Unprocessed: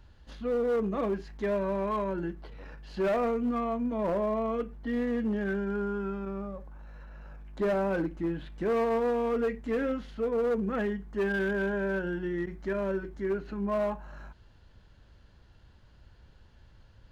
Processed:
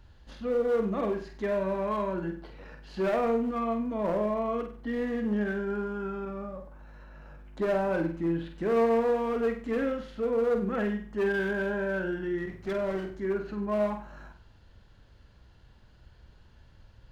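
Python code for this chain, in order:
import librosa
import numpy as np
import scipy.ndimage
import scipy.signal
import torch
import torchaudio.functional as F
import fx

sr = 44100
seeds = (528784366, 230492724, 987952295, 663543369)

y = fx.lower_of_two(x, sr, delay_ms=5.0, at=(12.49, 13.12))
y = fx.room_flutter(y, sr, wall_m=8.2, rt60_s=0.42)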